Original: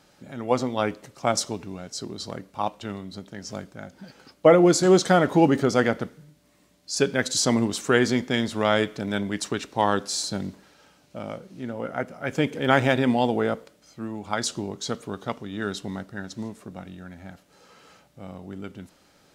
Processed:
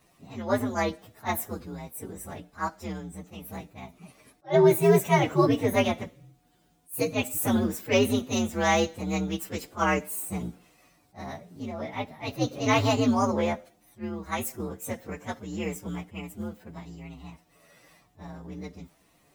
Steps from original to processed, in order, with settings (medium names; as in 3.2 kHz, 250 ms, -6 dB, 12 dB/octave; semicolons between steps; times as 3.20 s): frequency axis rescaled in octaves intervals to 125%; attacks held to a fixed rise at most 330 dB/s